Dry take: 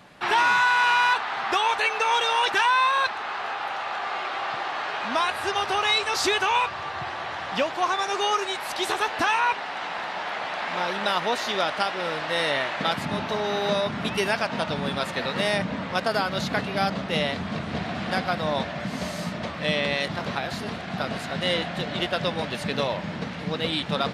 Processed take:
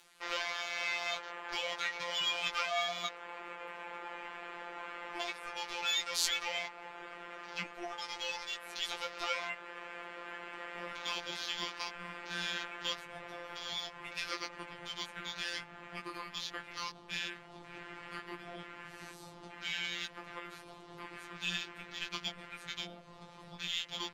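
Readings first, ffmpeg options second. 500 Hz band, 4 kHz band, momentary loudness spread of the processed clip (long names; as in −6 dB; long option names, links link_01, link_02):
−18.5 dB, −9.0 dB, 14 LU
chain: -filter_complex "[0:a]afwtdn=0.02,aderivative,asplit=2[link_01][link_02];[link_02]acompressor=mode=upward:threshold=-37dB:ratio=2.5,volume=-2dB[link_03];[link_01][link_03]amix=inputs=2:normalize=0,flanger=delay=15.5:depth=3.4:speed=0.15,afftfilt=real='hypot(re,im)*cos(PI*b)':imag='0':win_size=1024:overlap=0.75,afreqshift=-340"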